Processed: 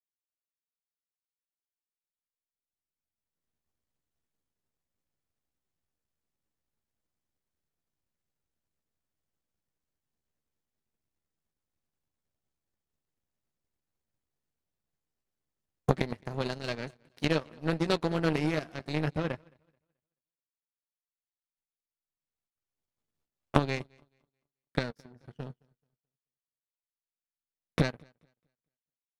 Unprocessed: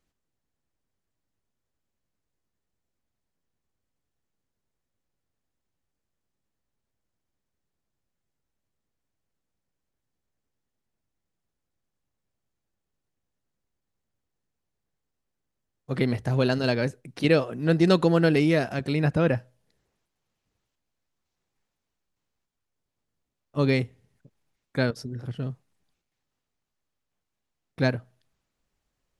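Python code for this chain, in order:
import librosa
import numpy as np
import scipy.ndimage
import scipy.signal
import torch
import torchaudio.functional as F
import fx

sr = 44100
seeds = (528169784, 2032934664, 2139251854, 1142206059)

y = fx.recorder_agc(x, sr, target_db=-12.5, rise_db_per_s=8.4, max_gain_db=30)
y = fx.doubler(y, sr, ms=13.0, db=-9.0)
y = fx.echo_feedback(y, sr, ms=216, feedback_pct=51, wet_db=-15)
y = fx.power_curve(y, sr, exponent=2.0)
y = y * librosa.db_to_amplitude(2.0)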